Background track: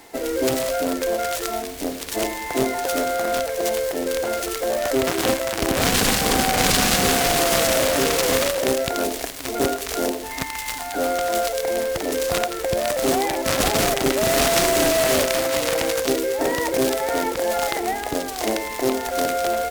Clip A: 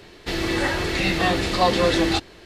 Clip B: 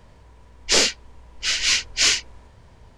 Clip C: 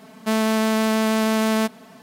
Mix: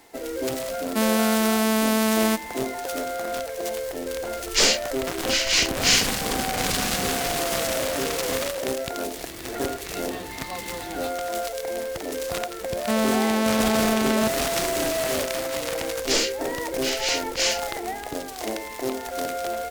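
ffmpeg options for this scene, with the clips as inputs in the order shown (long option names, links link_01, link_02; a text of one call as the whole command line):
ffmpeg -i bed.wav -i cue0.wav -i cue1.wav -i cue2.wav -filter_complex "[3:a]asplit=2[link_01][link_02];[2:a]asplit=2[link_03][link_04];[0:a]volume=-6.5dB[link_05];[link_01]highshelf=frequency=8500:gain=12[link_06];[link_03]aeval=exprs='clip(val(0),-1,0.282)':channel_layout=same[link_07];[link_02]acrusher=bits=11:mix=0:aa=0.000001[link_08];[link_06]atrim=end=2.02,asetpts=PTS-STARTPTS,volume=-1.5dB,afade=type=in:duration=0.004:curve=hsin,afade=type=out:start_time=2.016:duration=0.004:curve=hsin,adelay=690[link_09];[link_07]atrim=end=2.97,asetpts=PTS-STARTPTS,volume=-1dB,afade=type=in:duration=0.004:curve=hsin,afade=type=out:start_time=2.966:duration=0.004:curve=hsin,adelay=3860[link_10];[1:a]atrim=end=2.45,asetpts=PTS-STARTPTS,volume=-17dB,afade=type=in:duration=0.004:curve=hsin,afade=type=out:start_time=2.446:duration=0.004:curve=hsin,adelay=392490S[link_11];[link_08]atrim=end=2.02,asetpts=PTS-STARTPTS,volume=-2.5dB,afade=type=in:duration=0.004:curve=hsin,afade=type=out:start_time=2.016:duration=0.004:curve=hsin,adelay=12610[link_12];[link_04]atrim=end=2.97,asetpts=PTS-STARTPTS,volume=-6dB,afade=type=in:duration=0.004:curve=hsin,afade=type=out:start_time=2.966:duration=0.004:curve=hsin,adelay=15390[link_13];[link_05][link_09][link_10][link_11][link_12][link_13]amix=inputs=6:normalize=0" out.wav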